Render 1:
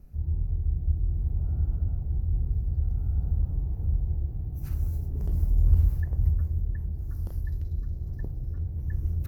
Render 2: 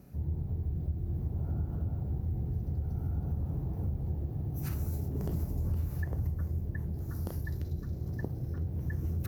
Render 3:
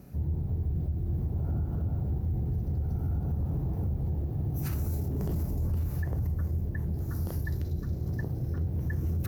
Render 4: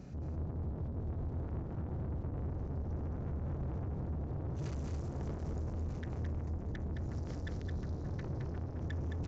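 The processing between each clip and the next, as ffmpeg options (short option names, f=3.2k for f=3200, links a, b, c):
-af "highpass=140,acompressor=threshold=-36dB:ratio=6,volume=7.5dB"
-af "alimiter=level_in=4dB:limit=-24dB:level=0:latency=1:release=10,volume=-4dB,volume=4.5dB"
-filter_complex "[0:a]asoftclip=type=tanh:threshold=-39.5dB,asplit=2[a][b];[b]aecho=0:1:216:0.596[c];[a][c]amix=inputs=2:normalize=0,aresample=16000,aresample=44100,volume=1.5dB"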